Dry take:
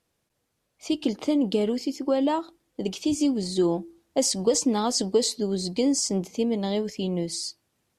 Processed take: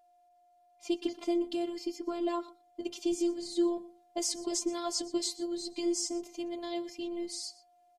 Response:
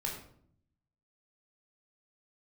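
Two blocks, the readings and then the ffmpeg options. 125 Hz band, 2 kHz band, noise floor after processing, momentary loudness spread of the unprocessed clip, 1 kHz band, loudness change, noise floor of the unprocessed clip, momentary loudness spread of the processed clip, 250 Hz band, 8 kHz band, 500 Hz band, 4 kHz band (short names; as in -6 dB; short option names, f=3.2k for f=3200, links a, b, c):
under -30 dB, -7.5 dB, -66 dBFS, 8 LU, -8.5 dB, -8.5 dB, -76 dBFS, 9 LU, -8.5 dB, -7.5 dB, -9.0 dB, -7.5 dB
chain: -af "afftfilt=real='hypot(re,im)*cos(PI*b)':imag='0':win_size=512:overlap=0.75,aecho=1:1:121:0.106,aeval=exprs='val(0)+0.00126*sin(2*PI*710*n/s)':c=same,volume=-4.5dB"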